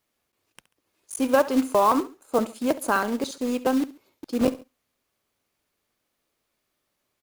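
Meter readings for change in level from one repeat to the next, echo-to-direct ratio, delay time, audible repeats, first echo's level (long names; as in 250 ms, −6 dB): −8.5 dB, −16.5 dB, 69 ms, 2, −17.0 dB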